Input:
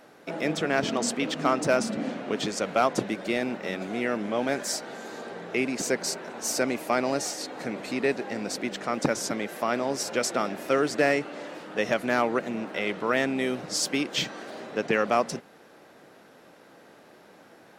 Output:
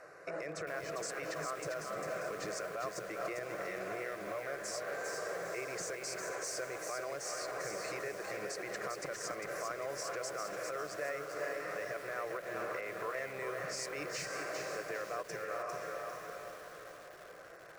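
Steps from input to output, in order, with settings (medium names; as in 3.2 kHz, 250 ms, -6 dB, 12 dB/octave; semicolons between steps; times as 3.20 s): low-pass 7.9 kHz 12 dB/octave; static phaser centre 900 Hz, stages 6; on a send: echo that smears into a reverb 513 ms, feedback 45%, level -15 dB; on the sum: compression 5:1, threshold -37 dBFS, peak gain reduction 16 dB; bass shelf 65 Hz -9 dB; peak limiter -32.5 dBFS, peak gain reduction 10 dB; graphic EQ with 31 bands 250 Hz -9 dB, 400 Hz -3 dB, 1 kHz +10 dB; bit-crushed delay 400 ms, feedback 35%, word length 9-bit, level -3.5 dB; trim +1.5 dB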